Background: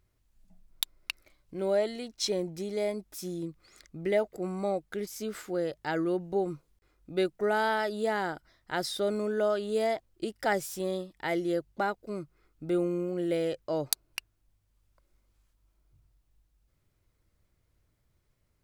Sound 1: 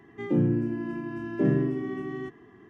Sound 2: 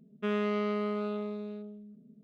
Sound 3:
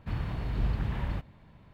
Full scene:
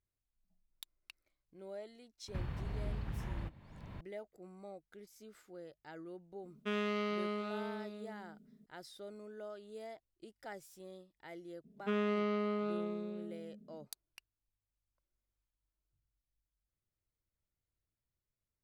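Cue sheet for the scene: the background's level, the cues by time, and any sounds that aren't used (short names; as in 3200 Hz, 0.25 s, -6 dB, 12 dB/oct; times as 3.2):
background -19.5 dB
2.28 add 3 -9 dB + three-band squash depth 100%
6.43 add 2 -6.5 dB + high shelf 2200 Hz +11 dB
11.64 add 2 -3.5 dB
not used: 1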